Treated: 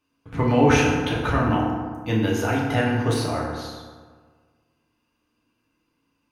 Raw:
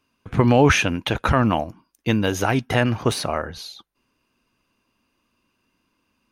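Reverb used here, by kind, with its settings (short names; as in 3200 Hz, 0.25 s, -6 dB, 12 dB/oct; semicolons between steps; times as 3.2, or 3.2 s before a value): FDN reverb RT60 1.6 s, low-frequency decay 1.05×, high-frequency decay 0.5×, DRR -4 dB; gain -8 dB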